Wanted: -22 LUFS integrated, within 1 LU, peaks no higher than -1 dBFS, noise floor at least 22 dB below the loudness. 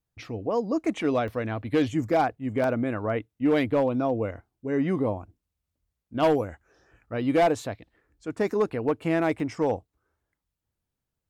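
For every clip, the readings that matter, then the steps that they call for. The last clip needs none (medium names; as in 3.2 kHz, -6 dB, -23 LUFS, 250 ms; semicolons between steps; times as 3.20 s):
clipped samples 0.6%; clipping level -16.0 dBFS; dropouts 3; longest dropout 1.2 ms; loudness -26.5 LUFS; peak level -16.0 dBFS; loudness target -22.0 LUFS
-> clip repair -16 dBFS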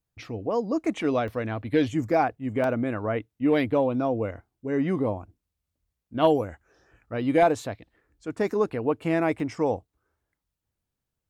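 clipped samples 0.0%; dropouts 3; longest dropout 1.2 ms
-> interpolate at 1.28/2.64/9.40 s, 1.2 ms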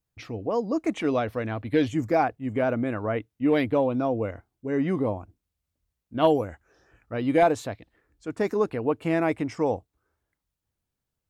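dropouts 0; loudness -26.0 LUFS; peak level -8.5 dBFS; loudness target -22.0 LUFS
-> trim +4 dB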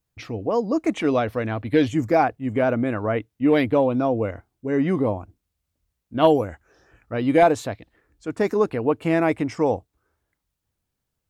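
loudness -22.0 LUFS; peak level -4.5 dBFS; noise floor -80 dBFS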